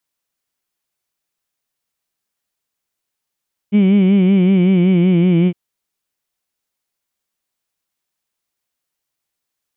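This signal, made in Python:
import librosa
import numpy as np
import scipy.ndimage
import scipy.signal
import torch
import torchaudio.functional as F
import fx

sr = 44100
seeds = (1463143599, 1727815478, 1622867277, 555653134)

y = fx.vowel(sr, seeds[0], length_s=1.81, word='heed', hz=199.0, glide_st=-2.5, vibrato_hz=5.3, vibrato_st=0.9)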